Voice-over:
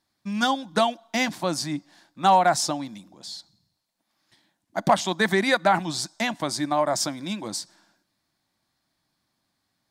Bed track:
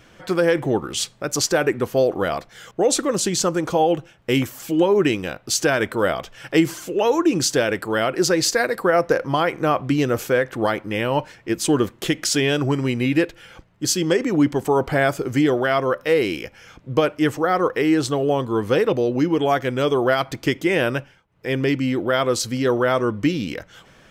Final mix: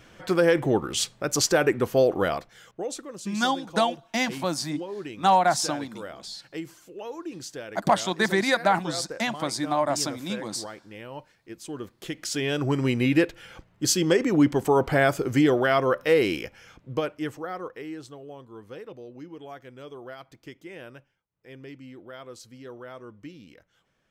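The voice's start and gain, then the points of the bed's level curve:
3.00 s, -1.5 dB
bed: 2.25 s -2 dB
3.08 s -18.5 dB
11.69 s -18.5 dB
12.85 s -2 dB
16.35 s -2 dB
18.22 s -22.5 dB

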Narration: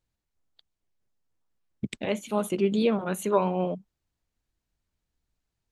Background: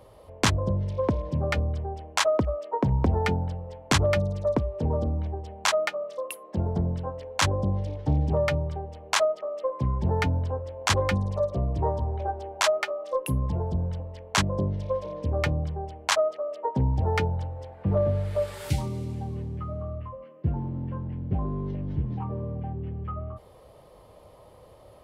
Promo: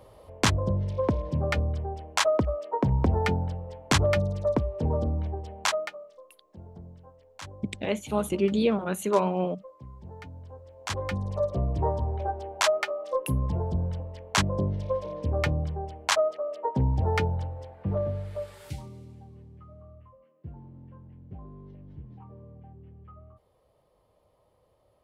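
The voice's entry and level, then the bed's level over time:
5.80 s, 0.0 dB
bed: 5.62 s -0.5 dB
6.26 s -19 dB
10.29 s -19 dB
11.46 s -0.5 dB
17.46 s -0.5 dB
19.3 s -15.5 dB

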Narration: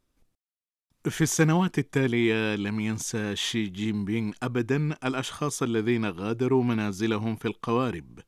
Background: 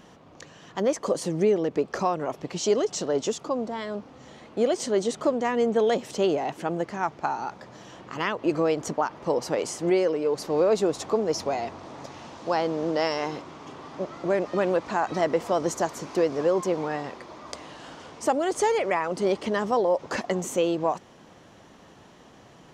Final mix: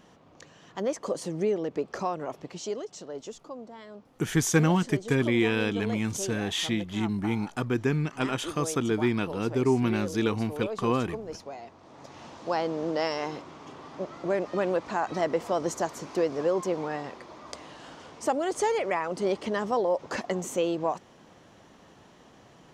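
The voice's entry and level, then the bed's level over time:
3.15 s, -0.5 dB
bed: 2.36 s -5 dB
2.88 s -13 dB
11.75 s -13 dB
12.23 s -3 dB

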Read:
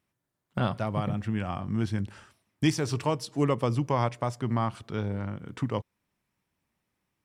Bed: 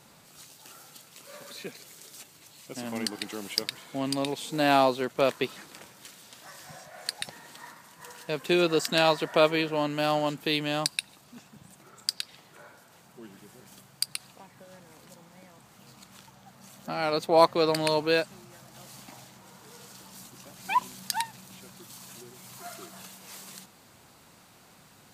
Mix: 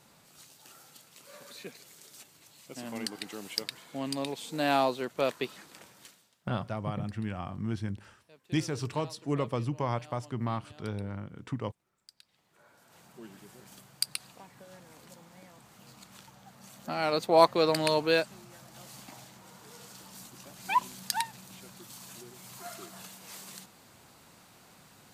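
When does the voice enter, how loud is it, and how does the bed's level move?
5.90 s, -5.0 dB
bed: 6.05 s -4.5 dB
6.45 s -27 dB
12.1 s -27 dB
12.99 s -1 dB

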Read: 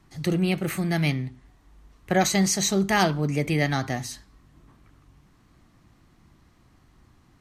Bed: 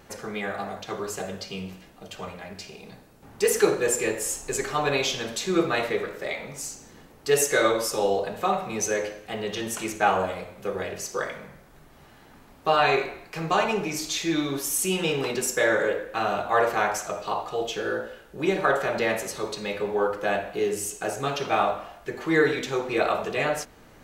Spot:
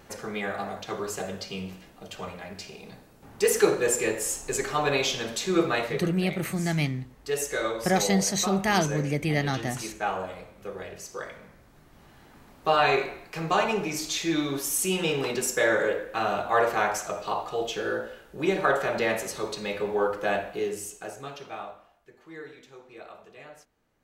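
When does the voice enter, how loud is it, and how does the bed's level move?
5.75 s, -2.5 dB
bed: 5.71 s -0.5 dB
6.17 s -7.5 dB
11.35 s -7.5 dB
12.46 s -1 dB
20.4 s -1 dB
22.13 s -21.5 dB

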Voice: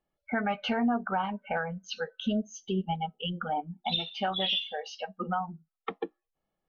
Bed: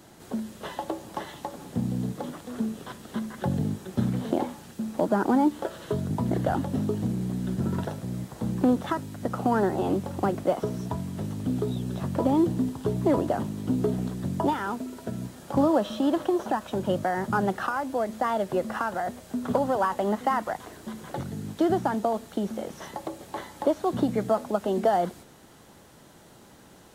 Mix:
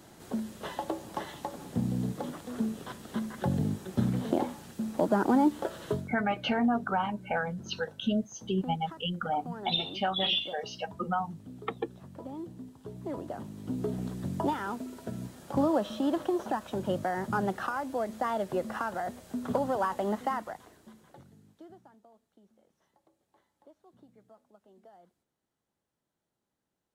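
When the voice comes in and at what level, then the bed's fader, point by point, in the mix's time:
5.80 s, +0.5 dB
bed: 5.92 s -2 dB
6.17 s -18.5 dB
12.67 s -18.5 dB
14.12 s -4.5 dB
20.19 s -4.5 dB
22.03 s -33.5 dB

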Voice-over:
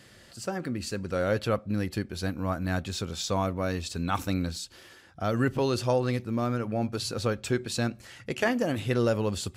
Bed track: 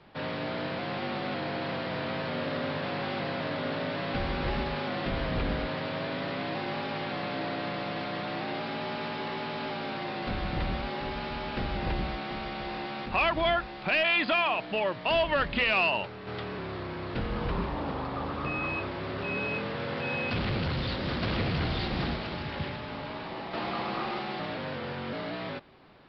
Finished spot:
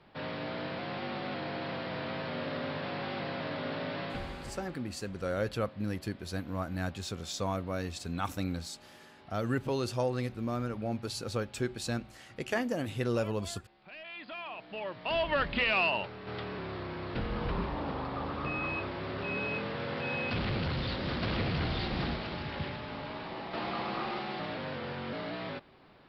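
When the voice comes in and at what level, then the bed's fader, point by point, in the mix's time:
4.10 s, -5.5 dB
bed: 4.02 s -4 dB
4.93 s -23 dB
13.9 s -23 dB
15.34 s -2.5 dB

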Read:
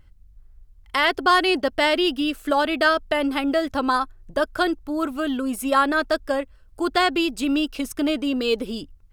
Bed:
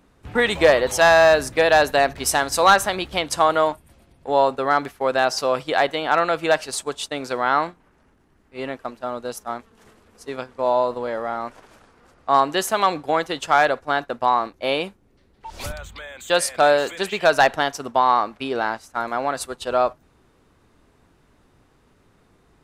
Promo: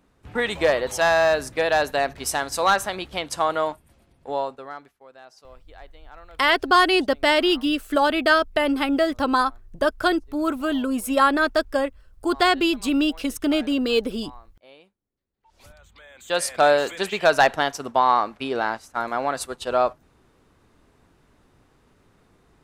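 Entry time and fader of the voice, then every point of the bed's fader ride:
5.45 s, +1.0 dB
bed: 4.26 s -5 dB
5.07 s -27.5 dB
15.27 s -27.5 dB
16.52 s -1 dB

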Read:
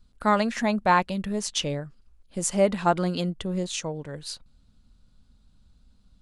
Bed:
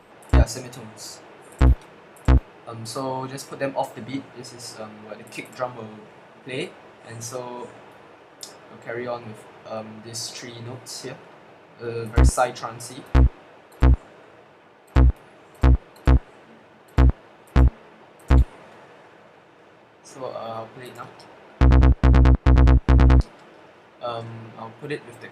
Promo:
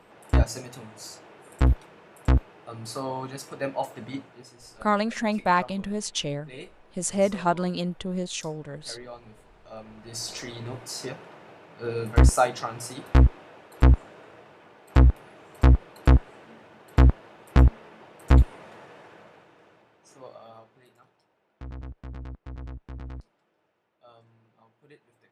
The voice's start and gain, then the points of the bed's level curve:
4.60 s, -1.5 dB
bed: 4.1 s -4 dB
4.57 s -12.5 dB
9.59 s -12.5 dB
10.37 s -0.5 dB
19.21 s -0.5 dB
21.26 s -24.5 dB

